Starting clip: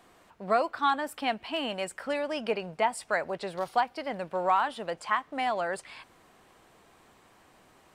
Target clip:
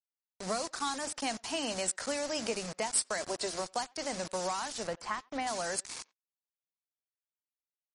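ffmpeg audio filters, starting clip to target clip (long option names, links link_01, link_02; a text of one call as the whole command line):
ffmpeg -i in.wav -filter_complex "[0:a]asettb=1/sr,asplit=3[link_01][link_02][link_03];[link_01]atrim=end=0.804[link_04];[link_02]atrim=start=0.8:end=1.5,asetpts=PTS-STARTPTS,afade=type=in:duration=0.004:curve=qsin,afade=type=out:start_time=0.696:duration=0.004:curve=qsin,highshelf=frequency=3200:gain=-3[link_05];[link_03]atrim=start=1.496[link_06];[link_04][link_05]acrossfade=duration=0.004:curve1=hsin:curve2=qsin[link_07];[link_07][link_06]acrossfade=duration=0.004:curve1=qsin:curve2=hsin,asplit=3[link_08][link_09][link_10];[link_08]afade=type=out:start_time=3.17:duration=0.02[link_11];[link_09]aecho=1:1:3:0.75,afade=type=in:start_time=3.17:duration=0.02,afade=type=out:start_time=3.58:duration=0.02[link_12];[link_10]afade=type=in:start_time=3.58:duration=0.02[link_13];[link_11][link_12][link_13]amix=inputs=3:normalize=0,acrossover=split=250|3000[link_14][link_15][link_16];[link_15]acompressor=threshold=-32dB:ratio=10[link_17];[link_14][link_17][link_16]amix=inputs=3:normalize=0,bandreject=frequency=50:width_type=h:width=6,bandreject=frequency=100:width_type=h:width=6,bandreject=frequency=150:width_type=h:width=6,bandreject=frequency=200:width_type=h:width=6,bandreject=frequency=250:width_type=h:width=6,bandreject=frequency=300:width_type=h:width=6,bandreject=frequency=350:width_type=h:width=6,acrusher=bits=6:mix=0:aa=0.000001,aexciter=amount=5.7:drive=4.9:freq=4600,asettb=1/sr,asplit=3[link_18][link_19][link_20];[link_18]atrim=end=4.874[link_21];[link_19]atrim=start=4.87:end=5.47,asetpts=PTS-STARTPTS,afade=type=in:duration=0.004:curve=qsin,afade=type=out:start_time=0.596:duration=0.004:curve=qsin,bass=frequency=250:gain=4,treble=frequency=4000:gain=-12[link_22];[link_20]atrim=start=5.466[link_23];[link_21][link_22]acrossfade=duration=0.004:curve1=hsin:curve2=qsin[link_24];[link_24][link_23]acrossfade=duration=0.004:curve1=qsin:curve2=hsin,adynamicsmooth=sensitivity=2.5:basefreq=5800,asplit=2[link_25][link_26];[link_26]adelay=90,highpass=300,lowpass=3400,asoftclip=type=hard:threshold=-34dB,volume=-25dB[link_27];[link_25][link_27]amix=inputs=2:normalize=0" -ar 32000 -c:a libmp3lame -b:a 40k out.mp3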